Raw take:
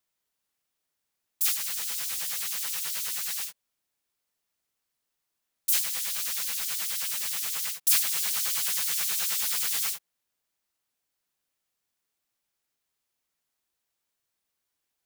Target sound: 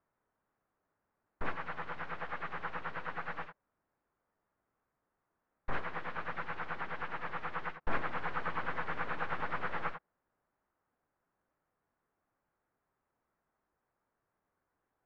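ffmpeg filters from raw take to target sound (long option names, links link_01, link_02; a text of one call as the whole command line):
ffmpeg -i in.wav -af "aeval=exprs='(tanh(12.6*val(0)+0.4)-tanh(0.4))/12.6':channel_layout=same,lowpass=frequency=1500:width=0.5412,lowpass=frequency=1500:width=1.3066,volume=10.5dB" out.wav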